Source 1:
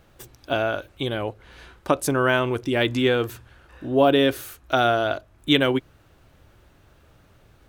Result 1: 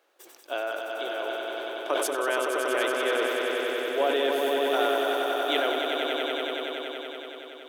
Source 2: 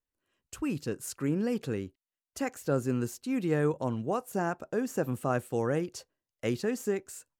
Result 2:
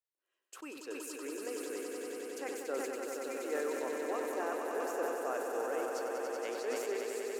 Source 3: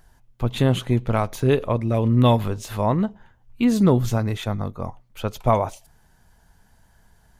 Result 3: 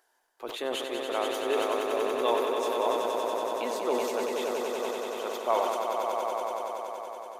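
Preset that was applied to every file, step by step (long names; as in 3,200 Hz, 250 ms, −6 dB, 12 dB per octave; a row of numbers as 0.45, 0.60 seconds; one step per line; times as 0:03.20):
inverse Chebyshev high-pass filter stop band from 180 Hz, stop band 40 dB
echo that builds up and dies away 94 ms, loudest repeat 5, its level −6 dB
level that may fall only so fast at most 31 dB per second
level −8 dB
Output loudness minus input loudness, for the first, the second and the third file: −5.0, −5.5, −8.0 LU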